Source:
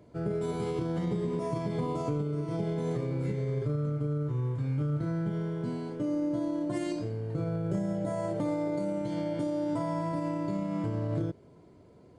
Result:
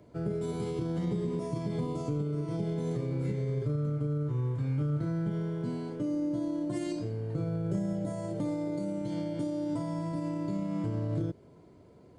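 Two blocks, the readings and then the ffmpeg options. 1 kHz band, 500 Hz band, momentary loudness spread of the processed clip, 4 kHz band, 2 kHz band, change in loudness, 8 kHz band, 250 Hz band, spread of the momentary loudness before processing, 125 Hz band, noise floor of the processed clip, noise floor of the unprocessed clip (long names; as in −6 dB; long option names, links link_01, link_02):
−5.5 dB, −3.0 dB, 3 LU, −1.5 dB, −4.0 dB, −1.0 dB, can't be measured, −0.5 dB, 3 LU, 0.0 dB, −56 dBFS, −56 dBFS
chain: -filter_complex "[0:a]acrossover=split=430|3000[link_01][link_02][link_03];[link_02]acompressor=threshold=-44dB:ratio=3[link_04];[link_01][link_04][link_03]amix=inputs=3:normalize=0"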